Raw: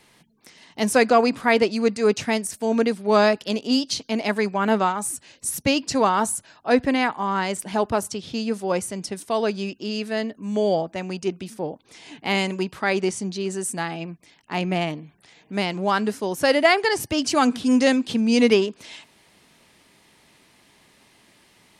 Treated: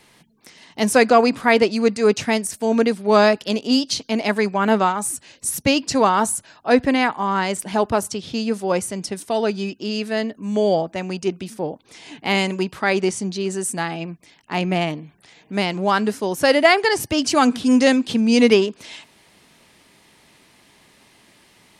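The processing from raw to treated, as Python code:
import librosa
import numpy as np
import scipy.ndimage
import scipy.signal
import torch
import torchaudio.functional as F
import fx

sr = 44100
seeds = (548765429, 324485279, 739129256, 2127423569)

y = fx.notch_comb(x, sr, f0_hz=550.0, at=(9.31, 9.8))
y = F.gain(torch.from_numpy(y), 3.0).numpy()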